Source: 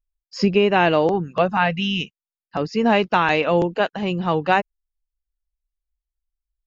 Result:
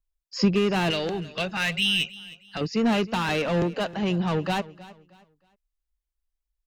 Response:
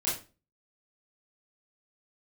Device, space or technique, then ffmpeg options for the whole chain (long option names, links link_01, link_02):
one-band saturation: -filter_complex "[0:a]asettb=1/sr,asplit=3[link_01][link_02][link_03];[link_01]atrim=end=0.904[link_04];[link_02]atrim=start=0.9:end=2.61,asetpts=PTS-STARTPTS,afade=type=in:duration=0.004:curve=qsin,afade=type=out:start_time=1.706:duration=0.004:curve=qsin,equalizer=frequency=125:width_type=o:width=1:gain=-6,equalizer=frequency=250:width_type=o:width=1:gain=-7,equalizer=frequency=500:width_type=o:width=1:gain=-4,equalizer=frequency=1000:width_type=o:width=1:gain=-12,equalizer=frequency=2000:width_type=o:width=1:gain=7,equalizer=frequency=4000:width_type=o:width=1:gain=8[link_05];[link_03]atrim=start=2.606[link_06];[link_04][link_05]acrossfade=duration=0.004:curve1=hsin:curve2=qsin[link_07];[link_07][link_06]acrossfade=duration=0.004:curve1=qsin:curve2=hsin,acrossover=split=260|3400[link_08][link_09][link_10];[link_09]asoftclip=type=tanh:threshold=-25.5dB[link_11];[link_08][link_11][link_10]amix=inputs=3:normalize=0,aecho=1:1:314|628|942:0.112|0.0337|0.0101"